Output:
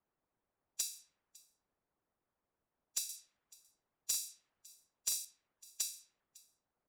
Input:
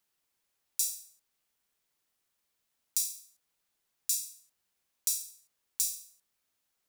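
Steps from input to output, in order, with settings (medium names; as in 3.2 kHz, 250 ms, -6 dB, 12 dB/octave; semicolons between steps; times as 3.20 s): level-controlled noise filter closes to 1 kHz, open at -31 dBFS; 3.09–5.25 s: treble shelf 2.7 kHz +7 dB; harmonic-percussive split harmonic -11 dB; treble shelf 6.5 kHz -11 dB; peak limiter -27 dBFS, peak gain reduction 8 dB; delay 554 ms -23.5 dB; slew-rate limiter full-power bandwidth 160 Hz; trim +7.5 dB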